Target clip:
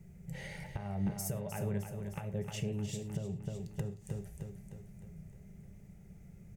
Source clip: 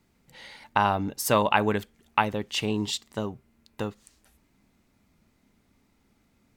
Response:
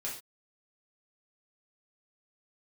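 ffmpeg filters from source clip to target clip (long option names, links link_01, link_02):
-filter_complex "[0:a]acompressor=threshold=-39dB:ratio=6,firequalizer=gain_entry='entry(110,0);entry(160,8);entry(260,-21);entry(390,-8);entry(710,-11);entry(1000,-25);entry(1900,-14);entry(4000,-26);entry(6200,-13)':delay=0.05:min_phase=1,aecho=1:1:307|614|921|1228|1535|1842:0.376|0.195|0.102|0.0528|0.0275|0.0143,asplit=2[link_01][link_02];[1:a]atrim=start_sample=2205,afade=type=out:start_time=0.17:duration=0.01,atrim=end_sample=7938[link_03];[link_02][link_03]afir=irnorm=-1:irlink=0,volume=-5.5dB[link_04];[link_01][link_04]amix=inputs=2:normalize=0,alimiter=level_in=13dB:limit=-24dB:level=0:latency=1:release=388,volume=-13dB,volume=12dB"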